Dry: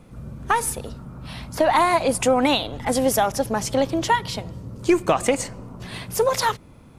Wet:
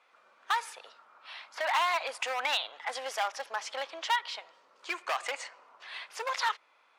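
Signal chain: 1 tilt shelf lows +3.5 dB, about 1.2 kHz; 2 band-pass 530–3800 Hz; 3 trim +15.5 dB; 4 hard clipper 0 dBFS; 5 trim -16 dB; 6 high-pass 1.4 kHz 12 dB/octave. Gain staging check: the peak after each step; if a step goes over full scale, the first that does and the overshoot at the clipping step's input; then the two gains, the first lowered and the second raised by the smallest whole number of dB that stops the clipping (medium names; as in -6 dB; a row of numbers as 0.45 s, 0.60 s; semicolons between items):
-4.5 dBFS, -7.0 dBFS, +8.5 dBFS, 0.0 dBFS, -16.0 dBFS, -15.5 dBFS; step 3, 8.5 dB; step 3 +6.5 dB, step 5 -7 dB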